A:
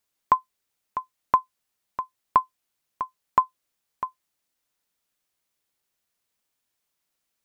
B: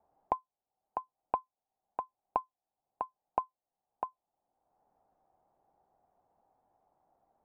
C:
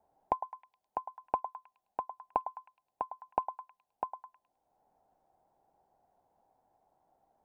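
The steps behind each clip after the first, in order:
ladder low-pass 830 Hz, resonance 75%; three-band squash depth 70%; gain +2 dB
notch 1200 Hz, Q 8.1; on a send: delay with a stepping band-pass 0.105 s, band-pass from 860 Hz, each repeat 0.7 oct, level -9 dB; on the sum: gain +1 dB

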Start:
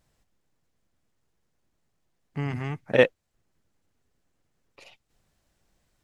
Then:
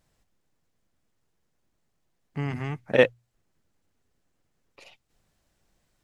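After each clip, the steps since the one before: notches 60/120 Hz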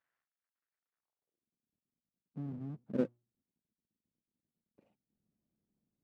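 half-waves squared off; band-pass sweep 1600 Hz -> 220 Hz, 0.93–1.5; gain -8.5 dB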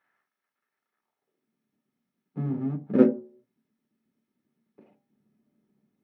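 reverb RT60 0.45 s, pre-delay 3 ms, DRR 4 dB; gain +2 dB

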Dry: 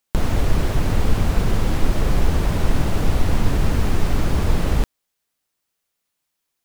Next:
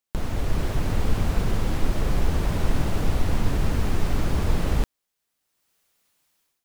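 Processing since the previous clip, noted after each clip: AGC gain up to 16 dB; gain -8 dB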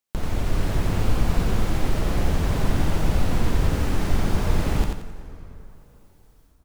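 on a send: feedback echo 88 ms, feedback 31%, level -3.5 dB; on the sum: plate-style reverb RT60 3.8 s, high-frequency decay 0.65×, DRR 13 dB

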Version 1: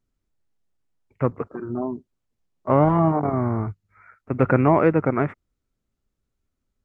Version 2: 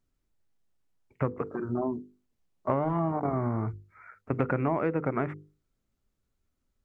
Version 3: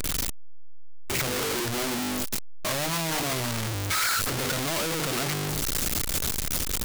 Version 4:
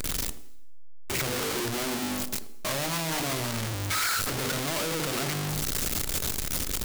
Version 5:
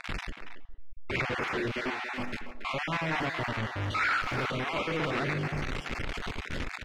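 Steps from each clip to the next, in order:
notches 50/100/150/200/250/300/350/400/450/500 Hz; compressor 6:1, threshold -24 dBFS, peak gain reduction 11.5 dB
infinite clipping; high shelf 2300 Hz +11.5 dB; gain +2 dB
narrowing echo 81 ms, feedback 44%, band-pass 340 Hz, level -8.5 dB; plate-style reverb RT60 0.86 s, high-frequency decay 0.95×, DRR 15 dB; gain -2 dB
random spectral dropouts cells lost 24%; synth low-pass 2200 Hz, resonance Q 1.5; speakerphone echo 0.28 s, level -8 dB

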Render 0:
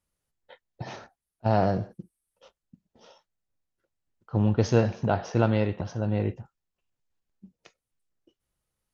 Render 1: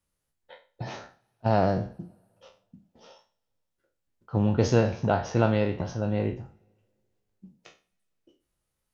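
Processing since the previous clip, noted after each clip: spectral trails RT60 0.34 s; wow and flutter 22 cents; two-slope reverb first 0.23 s, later 2 s, from -18 dB, DRR 19.5 dB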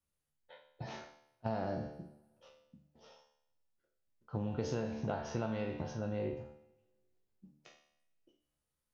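resonator 74 Hz, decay 0.69 s, harmonics all, mix 80%; compressor 6:1, threshold -34 dBFS, peak gain reduction 9 dB; gain +2 dB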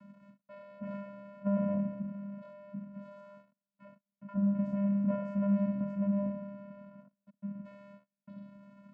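zero-crossing step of -44 dBFS; polynomial smoothing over 41 samples; vocoder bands 8, square 200 Hz; gain +6.5 dB

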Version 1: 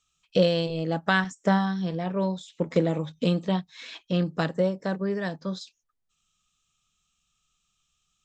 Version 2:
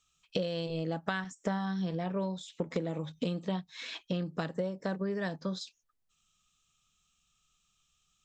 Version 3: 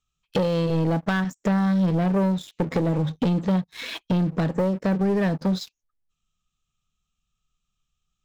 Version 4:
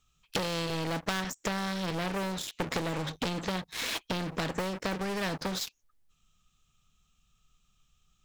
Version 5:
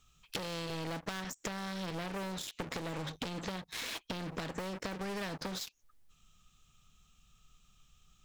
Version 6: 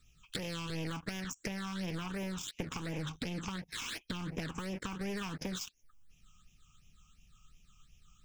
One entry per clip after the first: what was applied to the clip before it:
compressor 6:1, threshold -30 dBFS, peak gain reduction 14 dB
tilt -2 dB/oct; sample leveller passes 3
spectral compressor 2:1
compressor 6:1, threshold -42 dBFS, peak gain reduction 14 dB; gain +4.5 dB
phaser stages 8, 2.8 Hz, lowest notch 530–1300 Hz; gain +2.5 dB

